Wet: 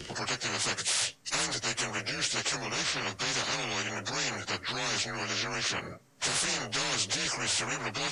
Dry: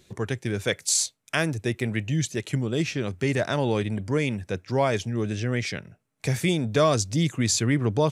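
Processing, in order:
partials spread apart or drawn together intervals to 91%
every bin compressed towards the loudest bin 10 to 1
level −7 dB

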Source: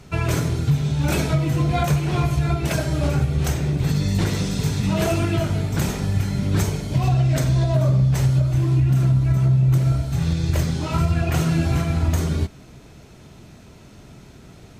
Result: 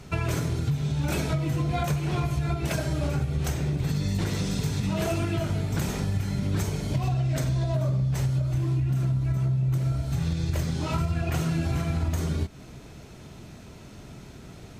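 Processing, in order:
downward compressor 3 to 1, threshold −25 dBFS, peak gain reduction 8.5 dB

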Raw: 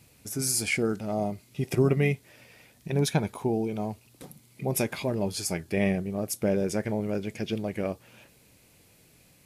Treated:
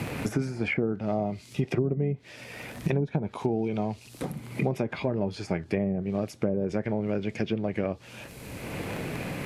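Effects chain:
surface crackle 23 per second −43 dBFS
treble cut that deepens with the level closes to 540 Hz, closed at −20 dBFS
multiband upward and downward compressor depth 100%

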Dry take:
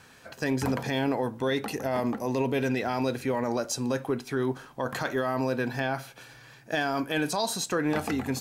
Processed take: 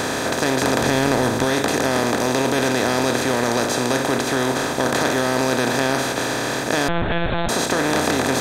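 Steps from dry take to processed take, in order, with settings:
compressor on every frequency bin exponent 0.2
0:00.81–0:01.45: low-shelf EQ 110 Hz +11 dB
0:06.88–0:07.49: one-pitch LPC vocoder at 8 kHz 170 Hz

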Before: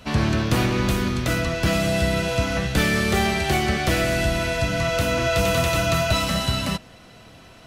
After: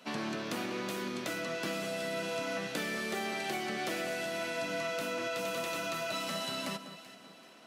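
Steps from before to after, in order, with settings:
high-pass filter 210 Hz 24 dB per octave
downward compressor, threshold −24 dBFS, peak gain reduction 6.5 dB
delay that swaps between a low-pass and a high-pass 192 ms, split 1,600 Hz, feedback 61%, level −10 dB
level −8.5 dB

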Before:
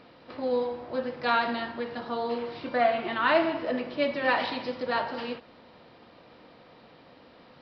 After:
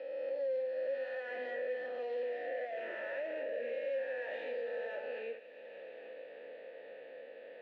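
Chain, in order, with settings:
peak hold with a rise ahead of every peak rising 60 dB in 1.18 s
source passing by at 0:02.60, 22 m/s, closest 17 metres
notch filter 1,400 Hz, Q 21
reversed playback
downward compressor, threshold −33 dBFS, peak gain reduction 14.5 dB
reversed playback
mid-hump overdrive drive 20 dB, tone 1,500 Hz, clips at −22.5 dBFS
formant filter e
on a send: delay with a high-pass on its return 158 ms, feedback 75%, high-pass 2,700 Hz, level −15 dB
on the sum: multiband upward and downward compressor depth 70%

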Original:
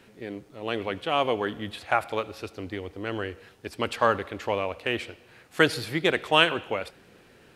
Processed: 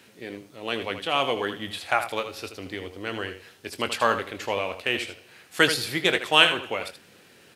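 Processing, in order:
high-pass filter 86 Hz
high-shelf EQ 2,300 Hz +10 dB
on a send: ambience of single reflections 22 ms −11.5 dB, 79 ms −10 dB
on the sum: level −2 dB

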